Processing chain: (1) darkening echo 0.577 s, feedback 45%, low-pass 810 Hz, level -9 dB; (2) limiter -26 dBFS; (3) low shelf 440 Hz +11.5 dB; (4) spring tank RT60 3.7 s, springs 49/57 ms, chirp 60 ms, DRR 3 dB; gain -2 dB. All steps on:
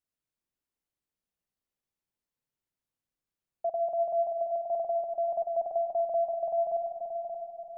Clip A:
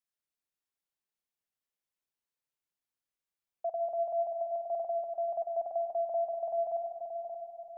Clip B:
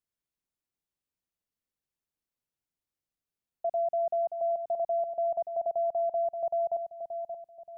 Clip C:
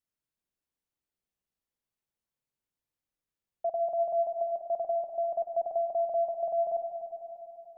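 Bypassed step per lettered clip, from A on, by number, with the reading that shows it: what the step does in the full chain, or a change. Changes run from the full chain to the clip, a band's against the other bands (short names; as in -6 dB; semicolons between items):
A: 3, loudness change -3.5 LU; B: 4, momentary loudness spread change +1 LU; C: 1, momentary loudness spread change +3 LU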